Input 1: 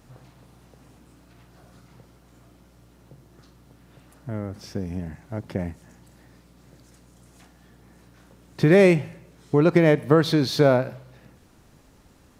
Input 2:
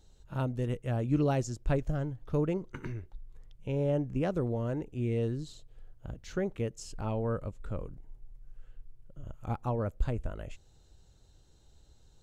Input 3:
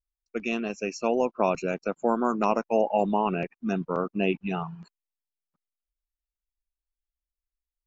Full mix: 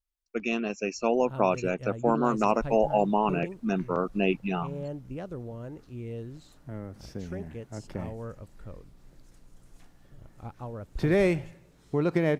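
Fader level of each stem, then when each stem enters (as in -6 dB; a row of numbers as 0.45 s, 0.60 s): -8.0 dB, -7.0 dB, 0.0 dB; 2.40 s, 0.95 s, 0.00 s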